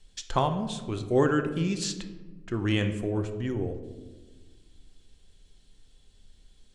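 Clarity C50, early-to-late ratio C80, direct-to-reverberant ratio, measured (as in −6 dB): 10.0 dB, 12.0 dB, 7.0 dB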